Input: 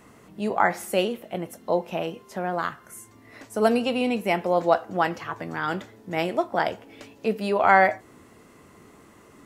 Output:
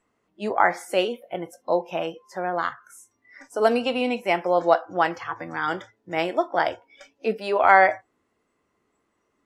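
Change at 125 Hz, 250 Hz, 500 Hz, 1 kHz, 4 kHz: -6.0 dB, -2.5 dB, +1.5 dB, +2.0 dB, +1.0 dB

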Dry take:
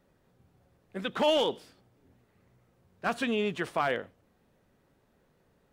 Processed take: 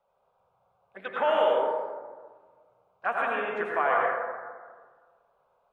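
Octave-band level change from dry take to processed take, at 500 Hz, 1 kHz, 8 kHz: +3.5 dB, +7.0 dB, under -15 dB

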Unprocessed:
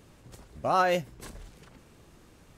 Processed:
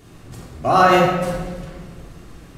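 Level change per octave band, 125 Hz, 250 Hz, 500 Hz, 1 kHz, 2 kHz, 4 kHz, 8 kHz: +16.0 dB, +16.0 dB, +11.5 dB, +12.0 dB, +12.0 dB, +12.0 dB, +9.5 dB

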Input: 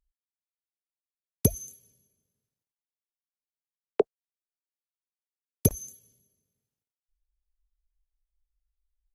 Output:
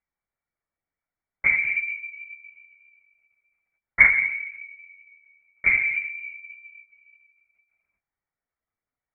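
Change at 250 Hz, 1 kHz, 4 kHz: under -15 dB, +5.5 dB, no reading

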